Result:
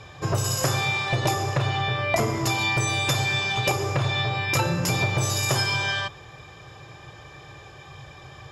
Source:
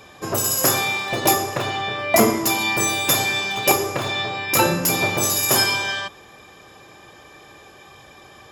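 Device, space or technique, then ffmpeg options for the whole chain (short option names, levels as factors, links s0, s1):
jukebox: -af "lowpass=6700,lowshelf=f=170:t=q:w=3:g=7,acompressor=threshold=0.1:ratio=5"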